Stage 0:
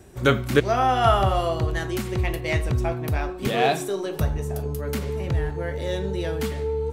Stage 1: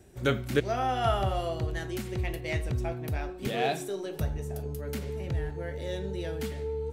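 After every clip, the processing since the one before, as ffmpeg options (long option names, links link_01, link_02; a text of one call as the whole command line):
ffmpeg -i in.wav -af "equalizer=frequency=1100:width_type=o:width=0.5:gain=-6.5,volume=-7dB" out.wav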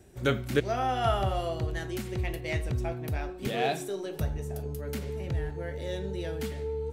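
ffmpeg -i in.wav -af anull out.wav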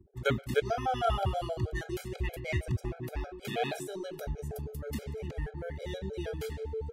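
ffmpeg -i in.wav -af "anlmdn=0.00158,afftfilt=real='re*gt(sin(2*PI*6.3*pts/sr)*(1-2*mod(floor(b*sr/1024/420),2)),0)':imag='im*gt(sin(2*PI*6.3*pts/sr)*(1-2*mod(floor(b*sr/1024/420),2)),0)':win_size=1024:overlap=0.75" out.wav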